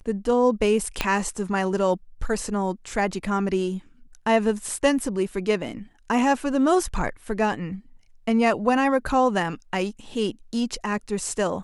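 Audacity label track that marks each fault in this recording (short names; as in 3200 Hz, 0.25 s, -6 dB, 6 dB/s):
1.010000	1.010000	pop -7 dBFS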